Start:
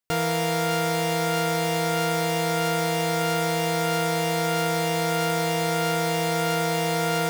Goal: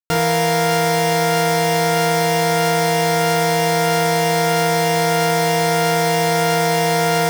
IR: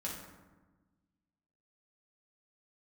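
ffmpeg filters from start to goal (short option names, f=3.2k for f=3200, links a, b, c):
-filter_complex "[0:a]acrusher=bits=7:dc=4:mix=0:aa=0.000001,asplit=2[a][b];[1:a]atrim=start_sample=2205,atrim=end_sample=4410[c];[b][c]afir=irnorm=-1:irlink=0,volume=-1.5dB[d];[a][d]amix=inputs=2:normalize=0,volume=3dB"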